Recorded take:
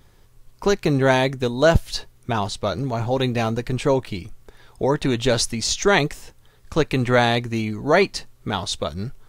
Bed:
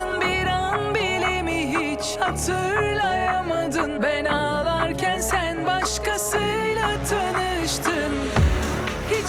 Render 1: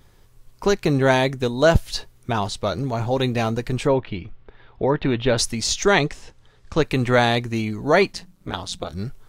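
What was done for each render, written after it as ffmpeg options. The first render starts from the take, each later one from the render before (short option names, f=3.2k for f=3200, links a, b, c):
-filter_complex "[0:a]asplit=3[a][b][c];[a]afade=t=out:st=3.86:d=0.02[d];[b]lowpass=f=3.4k:w=0.5412,lowpass=f=3.4k:w=1.3066,afade=t=in:st=3.86:d=0.02,afade=t=out:st=5.37:d=0.02[e];[c]afade=t=in:st=5.37:d=0.02[f];[d][e][f]amix=inputs=3:normalize=0,asettb=1/sr,asplit=3[g][h][i];[g]atrim=end=5.934[j];[h]atrim=start=5.93:end=6.82,asetpts=PTS-STARTPTS,afade=t=in:d=0.004:c=qsin,afade=t=out:st=0.886:d=0.004:c=qsin,lowpass=6.7k[k];[i]atrim=start=6.816[l];[j][k]acrossfade=d=0.004:c1=hsin:c2=qsin[m];[m][l]acrossfade=d=0.004:c1=qsin:c2=hsin,asettb=1/sr,asplit=3[n][o][p];[n]atrim=end=8.124[q];[o]atrim=start=8.12:end=8.93,asetpts=PTS-STARTPTS,afade=t=in:d=0.004:c=qsin,afade=t=out:st=0.806:d=0.004:c=qsin,tremolo=f=180:d=0.974[r];[p]atrim=start=8.926[s];[q][r]acrossfade=d=0.004:c1=hsin:c2=qsin[t];[t][s]acrossfade=d=0.004:c1=qsin:c2=hsin"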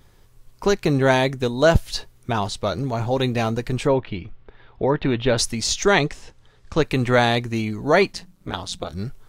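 -af anull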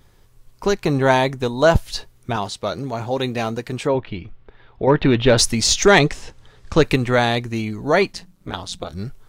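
-filter_complex "[0:a]asettb=1/sr,asplit=3[a][b][c];[a]atrim=end=0.784[d];[b]atrim=start=0.78:end=1.83,asetpts=PTS-STARTPTS,afade=t=in:d=0.004:c=qsin,afade=t=out:st=1.046:d=0.004:c=qsin,equalizer=f=940:t=o:w=0.72:g=5.5[e];[c]atrim=start=1.826[f];[d][e]acrossfade=d=0.004:c1=hsin:c2=qsin[g];[g][f]acrossfade=d=0.004:c1=qsin:c2=hsin,asettb=1/sr,asplit=3[h][i][j];[h]atrim=end=2.364[k];[i]atrim=start=2.36:end=3.95,asetpts=PTS-STARTPTS,afade=t=in:d=0.004:c=qsin,afade=t=out:st=1.586:d=0.004:c=qsin,highpass=f=160:p=1[l];[j]atrim=start=3.946[m];[k][l]acrossfade=d=0.004:c1=hsin:c2=qsin[n];[n][m]acrossfade=d=0.004:c1=qsin:c2=hsin,asettb=1/sr,asplit=3[o][p][q];[o]atrim=end=4.874[r];[p]atrim=start=4.87:end=6.96,asetpts=PTS-STARTPTS,afade=t=in:d=0.004:c=qsin,afade=t=out:st=2.086:d=0.004:c=qsin,acontrast=54[s];[q]atrim=start=6.956[t];[r][s]acrossfade=d=0.004:c1=hsin:c2=qsin[u];[u][t]acrossfade=d=0.004:c1=qsin:c2=hsin"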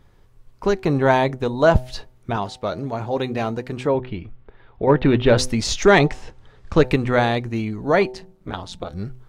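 -af "highshelf=f=3.6k:g=-11.5,bandreject=f=126.7:t=h:w=4,bandreject=f=253.4:t=h:w=4,bandreject=f=380.1:t=h:w=4,bandreject=f=506.8:t=h:w=4,bandreject=f=633.5:t=h:w=4,bandreject=f=760.2:t=h:w=4,bandreject=f=886.9:t=h:w=4"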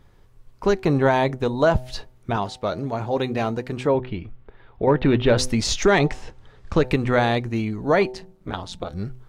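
-af "alimiter=limit=-8dB:level=0:latency=1:release=141"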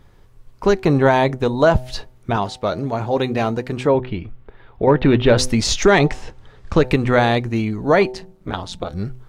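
-af "volume=4dB"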